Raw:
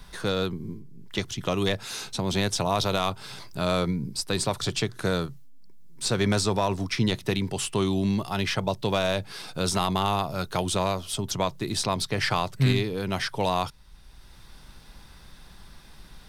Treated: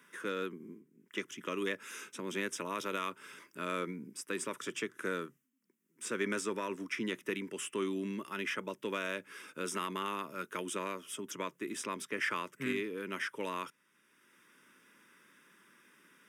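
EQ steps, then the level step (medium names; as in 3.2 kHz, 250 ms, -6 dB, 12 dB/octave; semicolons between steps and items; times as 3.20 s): high-pass 260 Hz 24 dB/octave; treble shelf 9.2 kHz -6.5 dB; static phaser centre 1.8 kHz, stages 4; -4.0 dB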